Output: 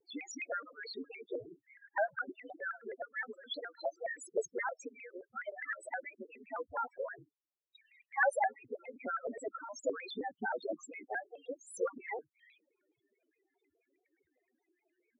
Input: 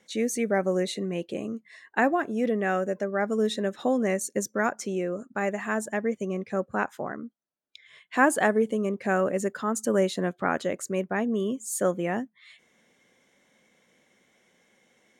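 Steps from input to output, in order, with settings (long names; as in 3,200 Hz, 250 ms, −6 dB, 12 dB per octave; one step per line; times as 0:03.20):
harmonic-percussive split with one part muted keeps percussive
high-shelf EQ 6,700 Hz −9 dB
spectral peaks only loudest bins 4
parametric band 77 Hz +6 dB 0.87 octaves
pitch modulation by a square or saw wave square 4.8 Hz, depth 160 cents
level −1 dB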